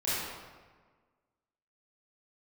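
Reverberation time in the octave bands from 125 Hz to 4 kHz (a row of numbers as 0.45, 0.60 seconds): 1.6, 1.6, 1.5, 1.4, 1.2, 0.95 seconds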